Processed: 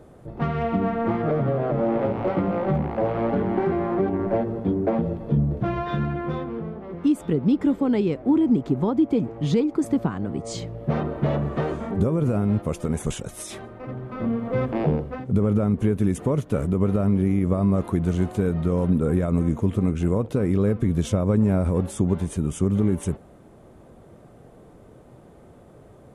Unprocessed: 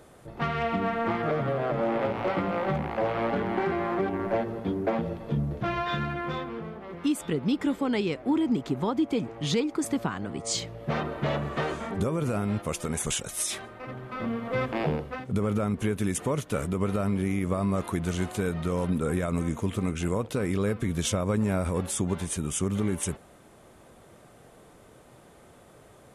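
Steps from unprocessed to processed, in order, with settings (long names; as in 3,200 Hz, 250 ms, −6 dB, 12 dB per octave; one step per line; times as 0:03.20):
tilt shelving filter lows +7.5 dB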